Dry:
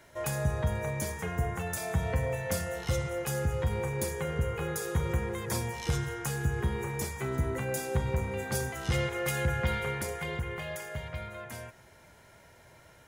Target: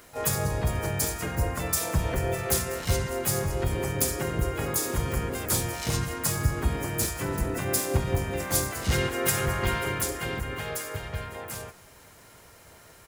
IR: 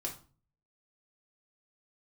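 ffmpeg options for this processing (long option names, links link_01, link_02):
-filter_complex "[0:a]asplit=4[link_01][link_02][link_03][link_04];[link_02]asetrate=29433,aresample=44100,atempo=1.49831,volume=-8dB[link_05];[link_03]asetrate=33038,aresample=44100,atempo=1.33484,volume=-1dB[link_06];[link_04]asetrate=58866,aresample=44100,atempo=0.749154,volume=-7dB[link_07];[link_01][link_05][link_06][link_07]amix=inputs=4:normalize=0,crystalizer=i=1.5:c=0"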